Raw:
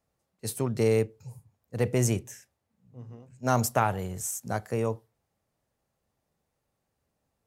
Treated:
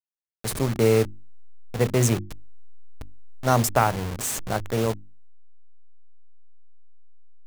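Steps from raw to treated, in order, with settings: send-on-delta sampling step -30 dBFS; hum notches 50/100/150/200/250/300/350 Hz; trim +5 dB

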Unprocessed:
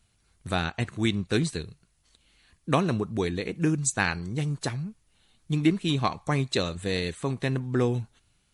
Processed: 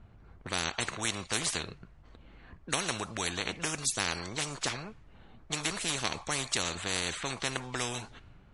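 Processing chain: level-controlled noise filter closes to 1.1 kHz, open at -22 dBFS; peaking EQ 7.1 kHz +3 dB 0.77 oct; spectrum-flattening compressor 4:1; trim -2.5 dB

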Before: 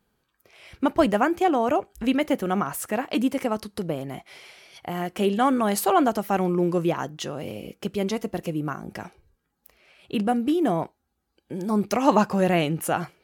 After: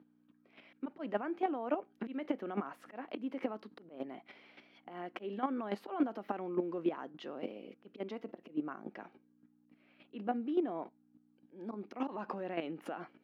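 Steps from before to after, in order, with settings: slow attack 159 ms; hum 60 Hz, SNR 22 dB; peak limiter -20 dBFS, peak gain reduction 11 dB; square tremolo 3.5 Hz, depth 65%, duty 10%; Chebyshev high-pass 250 Hz, order 3; distance through air 350 m

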